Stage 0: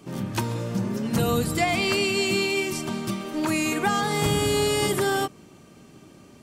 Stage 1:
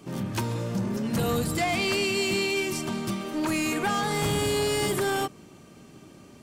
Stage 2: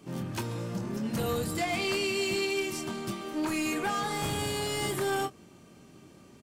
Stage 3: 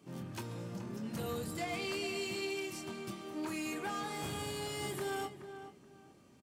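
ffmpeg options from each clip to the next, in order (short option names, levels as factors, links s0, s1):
-af "asoftclip=type=tanh:threshold=0.0944"
-filter_complex "[0:a]asplit=2[s0][s1];[s1]adelay=23,volume=0.422[s2];[s0][s2]amix=inputs=2:normalize=0,volume=0.562"
-filter_complex "[0:a]highpass=49,asplit=2[s0][s1];[s1]adelay=425,lowpass=f=2000:p=1,volume=0.316,asplit=2[s2][s3];[s3]adelay=425,lowpass=f=2000:p=1,volume=0.26,asplit=2[s4][s5];[s5]adelay=425,lowpass=f=2000:p=1,volume=0.26[s6];[s0][s2][s4][s6]amix=inputs=4:normalize=0,volume=0.376"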